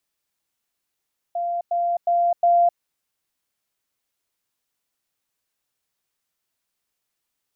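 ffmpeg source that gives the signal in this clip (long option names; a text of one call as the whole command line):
ffmpeg -f lavfi -i "aevalsrc='pow(10,(-22+3*floor(t/0.36))/20)*sin(2*PI*693*t)*clip(min(mod(t,0.36),0.26-mod(t,0.36))/0.005,0,1)':duration=1.44:sample_rate=44100" out.wav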